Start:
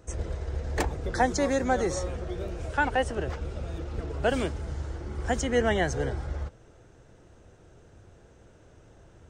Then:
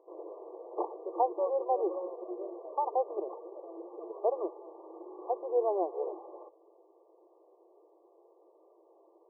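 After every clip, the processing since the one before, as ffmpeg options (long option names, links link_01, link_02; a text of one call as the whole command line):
ffmpeg -i in.wav -af "afftfilt=real='re*between(b*sr/4096,320,1200)':imag='im*between(b*sr/4096,320,1200)':win_size=4096:overlap=0.75,volume=-2.5dB" out.wav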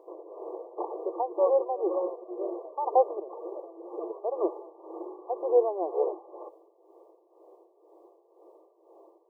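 ffmpeg -i in.wav -af "tremolo=f=2:d=0.75,volume=8.5dB" out.wav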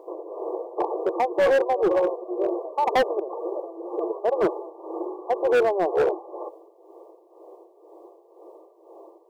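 ffmpeg -i in.wav -af "volume=24.5dB,asoftclip=hard,volume=-24.5dB,volume=8.5dB" out.wav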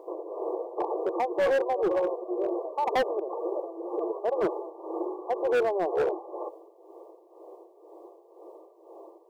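ffmpeg -i in.wav -af "alimiter=limit=-20dB:level=0:latency=1:release=56,volume=-1dB" out.wav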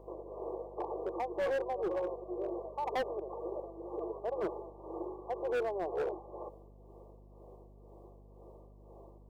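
ffmpeg -i in.wav -af "aeval=exprs='val(0)+0.00447*(sin(2*PI*50*n/s)+sin(2*PI*2*50*n/s)/2+sin(2*PI*3*50*n/s)/3+sin(2*PI*4*50*n/s)/4+sin(2*PI*5*50*n/s)/5)':channel_layout=same,volume=-8.5dB" out.wav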